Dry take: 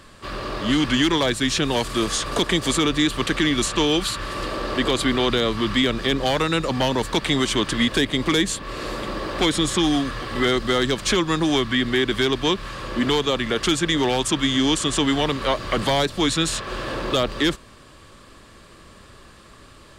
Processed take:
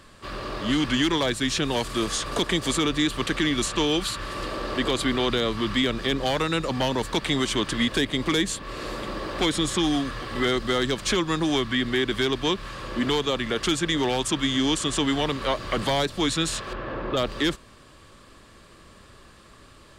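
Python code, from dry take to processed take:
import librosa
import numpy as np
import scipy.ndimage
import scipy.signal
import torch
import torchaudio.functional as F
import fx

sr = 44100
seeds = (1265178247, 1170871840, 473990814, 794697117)

y = fx.lowpass(x, sr, hz=2000.0, slope=12, at=(16.73, 17.17))
y = F.gain(torch.from_numpy(y), -3.5).numpy()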